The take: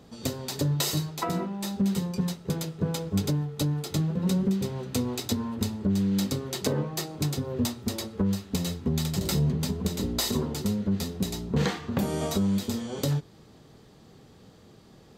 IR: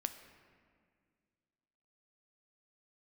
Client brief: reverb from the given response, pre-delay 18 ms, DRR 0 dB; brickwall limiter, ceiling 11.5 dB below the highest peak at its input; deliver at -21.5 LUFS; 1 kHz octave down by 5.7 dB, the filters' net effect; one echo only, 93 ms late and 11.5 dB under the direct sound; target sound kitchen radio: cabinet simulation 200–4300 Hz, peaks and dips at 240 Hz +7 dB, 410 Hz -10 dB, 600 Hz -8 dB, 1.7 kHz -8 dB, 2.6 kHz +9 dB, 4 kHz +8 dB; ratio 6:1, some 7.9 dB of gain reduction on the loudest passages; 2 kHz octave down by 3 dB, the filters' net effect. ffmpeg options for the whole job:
-filter_complex "[0:a]equalizer=f=1000:t=o:g=-3.5,equalizer=f=2000:t=o:g=-7,acompressor=threshold=0.0316:ratio=6,alimiter=level_in=1.88:limit=0.0631:level=0:latency=1,volume=0.531,aecho=1:1:93:0.266,asplit=2[s0][s1];[1:a]atrim=start_sample=2205,adelay=18[s2];[s1][s2]afir=irnorm=-1:irlink=0,volume=1.06[s3];[s0][s3]amix=inputs=2:normalize=0,highpass=200,equalizer=f=240:t=q:w=4:g=7,equalizer=f=410:t=q:w=4:g=-10,equalizer=f=600:t=q:w=4:g=-8,equalizer=f=1700:t=q:w=4:g=-8,equalizer=f=2600:t=q:w=4:g=9,equalizer=f=4000:t=q:w=4:g=8,lowpass=f=4300:w=0.5412,lowpass=f=4300:w=1.3066,volume=5.96"

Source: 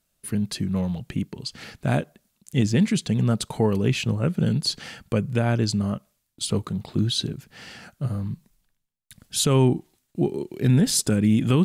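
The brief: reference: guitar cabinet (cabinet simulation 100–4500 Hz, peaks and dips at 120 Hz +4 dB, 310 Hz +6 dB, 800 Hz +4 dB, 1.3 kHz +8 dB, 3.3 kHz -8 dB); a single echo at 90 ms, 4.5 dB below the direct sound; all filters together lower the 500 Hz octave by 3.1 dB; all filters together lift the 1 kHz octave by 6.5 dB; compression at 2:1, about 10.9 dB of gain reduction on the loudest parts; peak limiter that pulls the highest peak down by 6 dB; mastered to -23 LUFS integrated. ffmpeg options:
-af "equalizer=f=500:t=o:g=-7.5,equalizer=f=1000:t=o:g=5.5,acompressor=threshold=0.0158:ratio=2,alimiter=level_in=1.06:limit=0.0631:level=0:latency=1,volume=0.944,highpass=100,equalizer=f=120:t=q:w=4:g=4,equalizer=f=310:t=q:w=4:g=6,equalizer=f=800:t=q:w=4:g=4,equalizer=f=1300:t=q:w=4:g=8,equalizer=f=3300:t=q:w=4:g=-8,lowpass=f=4500:w=0.5412,lowpass=f=4500:w=1.3066,aecho=1:1:90:0.596,volume=3.35"

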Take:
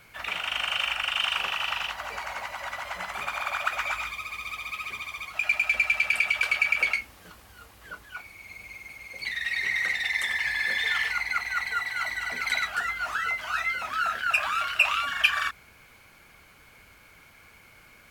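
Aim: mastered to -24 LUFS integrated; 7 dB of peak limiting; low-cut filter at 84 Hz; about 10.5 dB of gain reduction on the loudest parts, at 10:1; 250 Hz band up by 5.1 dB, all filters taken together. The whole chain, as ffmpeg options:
-af "highpass=84,equalizer=f=250:t=o:g=6.5,acompressor=threshold=0.0447:ratio=10,volume=2.66,alimiter=limit=0.178:level=0:latency=1"

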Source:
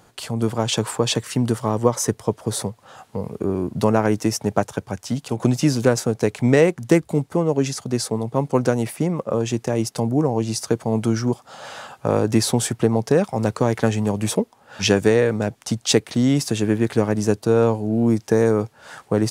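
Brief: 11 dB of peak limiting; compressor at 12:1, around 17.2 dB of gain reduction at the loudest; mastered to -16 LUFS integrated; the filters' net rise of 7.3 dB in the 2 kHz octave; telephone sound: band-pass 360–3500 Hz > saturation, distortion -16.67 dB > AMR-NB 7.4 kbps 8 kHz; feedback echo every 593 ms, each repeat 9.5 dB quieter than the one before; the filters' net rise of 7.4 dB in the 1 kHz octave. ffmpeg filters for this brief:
-af "equalizer=f=1000:t=o:g=8,equalizer=f=2000:t=o:g=7,acompressor=threshold=0.0501:ratio=12,alimiter=limit=0.0891:level=0:latency=1,highpass=360,lowpass=3500,aecho=1:1:593|1186|1779|2372:0.335|0.111|0.0365|0.012,asoftclip=threshold=0.0447,volume=15" -ar 8000 -c:a libopencore_amrnb -b:a 7400

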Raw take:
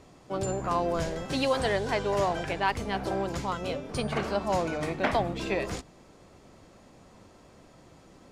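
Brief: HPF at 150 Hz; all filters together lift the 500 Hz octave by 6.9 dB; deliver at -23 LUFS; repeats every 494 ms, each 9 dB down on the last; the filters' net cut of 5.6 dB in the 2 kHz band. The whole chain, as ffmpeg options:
-af "highpass=150,equalizer=f=500:t=o:g=9,equalizer=f=2000:t=o:g=-8,aecho=1:1:494|988|1482|1976:0.355|0.124|0.0435|0.0152,volume=1.26"

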